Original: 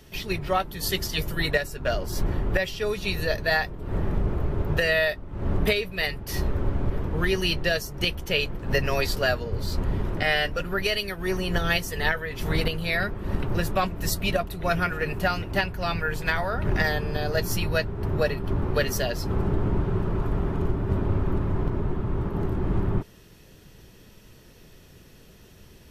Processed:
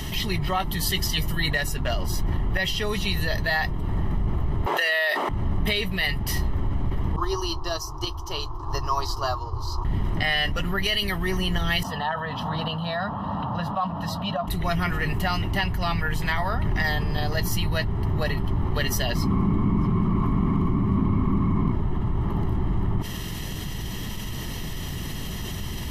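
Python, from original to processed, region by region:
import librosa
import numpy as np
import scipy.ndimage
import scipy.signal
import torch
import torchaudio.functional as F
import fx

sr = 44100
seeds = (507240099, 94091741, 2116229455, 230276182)

y = fx.chain(x, sr, fx.highpass(hz=420.0, slope=24),
    fx.env_flatten(amount_pct=70), at=(4.66, 5.29))
y = fx.chain(y, sr, fx.curve_eq(hz=(120.0, 210.0, 330.0, 520.0, 1100.0, 2000.0, 3400.0, 5400.0, 8700.0), db=(0, -25, 6, -5, 15, -18, -6, 7, -6)),
    fx.upward_expand(threshold_db=-34.0, expansion=2.5), at=(7.16, 9.85))
y = fx.chain(y, sr, fx.highpass(hz=260.0, slope=12),
    fx.air_absorb(metres=370.0),
    fx.fixed_phaser(hz=890.0, stages=4), at=(11.83, 14.48))
y = fx.chain(y, sr, fx.small_body(hz=(220.0, 1100.0, 2200.0), ring_ms=25, db=14),
    fx.echo_single(ms=627, db=-22.0), at=(19.15, 21.72))
y = fx.peak_eq(y, sr, hz=3200.0, db=3.5, octaves=0.39)
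y = y + 0.6 * np.pad(y, (int(1.0 * sr / 1000.0), 0))[:len(y)]
y = fx.env_flatten(y, sr, amount_pct=70)
y = y * librosa.db_to_amplitude(-8.0)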